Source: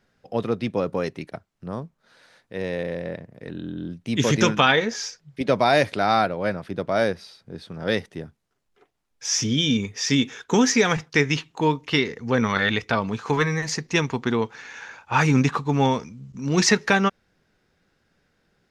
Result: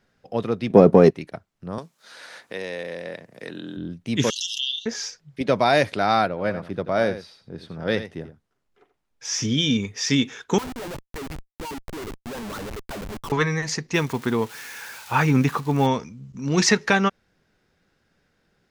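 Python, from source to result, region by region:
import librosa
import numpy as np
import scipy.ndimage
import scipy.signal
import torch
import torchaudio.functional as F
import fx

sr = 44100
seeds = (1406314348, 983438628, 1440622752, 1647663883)

y = fx.chain(x, sr, fx.leveller(passes=1),
    fx.small_body(hz=(210.0, 380.0, 670.0), ring_ms=20, db=13), at=(0.7, 1.11))
y = fx.chain(y, sr, fx.highpass(hz=480.0, slope=6),
    fx.peak_eq(hz=8900.0, db=7.5, octaves=2.4),
    fx.band_squash(depth_pct=70), at=(1.78, 3.77))
y = fx.chain(y, sr, fx.brickwall_highpass(low_hz=2700.0),
    fx.high_shelf(hz=6200.0, db=-5.0),
    fx.pre_swell(db_per_s=41.0), at=(4.3, 4.86))
y = fx.chain(y, sr, fx.high_shelf(hz=4100.0, db=-5.5),
    fx.echo_single(ms=85, db=-12.0), at=(6.28, 9.46))
y = fx.chain(y, sr, fx.low_shelf(hz=130.0, db=8.5),
    fx.wah_lfo(hz=5.7, low_hz=280.0, high_hz=1100.0, q=4.4),
    fx.schmitt(flips_db=-40.5), at=(10.58, 13.32))
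y = fx.chain(y, sr, fx.crossing_spikes(level_db=-24.0),
    fx.high_shelf(hz=4900.0, db=-11.0), at=(13.94, 15.87))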